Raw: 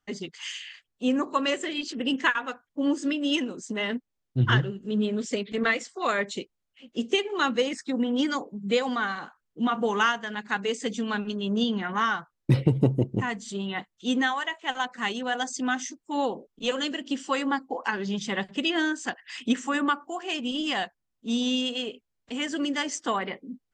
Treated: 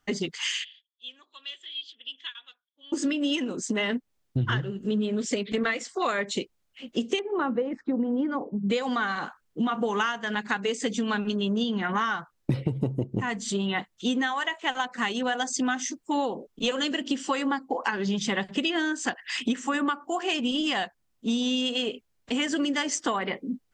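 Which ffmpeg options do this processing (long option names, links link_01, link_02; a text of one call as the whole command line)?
ffmpeg -i in.wav -filter_complex "[0:a]asplit=3[link_01][link_02][link_03];[link_01]afade=type=out:start_time=0.63:duration=0.02[link_04];[link_02]bandpass=frequency=3400:width_type=q:width=18,afade=type=in:start_time=0.63:duration=0.02,afade=type=out:start_time=2.92:duration=0.02[link_05];[link_03]afade=type=in:start_time=2.92:duration=0.02[link_06];[link_04][link_05][link_06]amix=inputs=3:normalize=0,asettb=1/sr,asplit=3[link_07][link_08][link_09];[link_07]atrim=end=7.194[link_10];[link_08]atrim=start=7.19:end=8.7,asetpts=PTS-STARTPTS,afade=type=in:duration=0.004:curve=qsin,afade=type=out:start_time=1.506:duration=0.004:curve=qsin,lowpass=1000[link_11];[link_09]atrim=start=8.696[link_12];[link_10][link_11]acrossfade=duration=0.004:curve1=hsin:curve2=qsin[link_13];[link_13][link_12]acrossfade=duration=0.004:curve1=qsin:curve2=hsin,acompressor=threshold=-32dB:ratio=6,volume=8dB" out.wav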